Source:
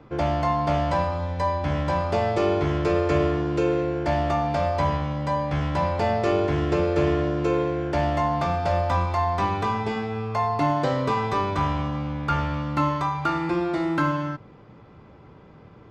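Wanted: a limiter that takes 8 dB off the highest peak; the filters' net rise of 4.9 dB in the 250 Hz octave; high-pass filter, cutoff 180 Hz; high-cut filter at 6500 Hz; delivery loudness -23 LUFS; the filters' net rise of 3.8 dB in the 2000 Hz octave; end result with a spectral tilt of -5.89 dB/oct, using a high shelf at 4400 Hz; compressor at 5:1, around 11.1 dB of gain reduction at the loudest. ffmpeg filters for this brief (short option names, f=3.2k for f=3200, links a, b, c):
-af "highpass=180,lowpass=6.5k,equalizer=f=250:t=o:g=8.5,equalizer=f=2k:t=o:g=6,highshelf=f=4.4k:g=-7,acompressor=threshold=-28dB:ratio=5,volume=10dB,alimiter=limit=-14.5dB:level=0:latency=1"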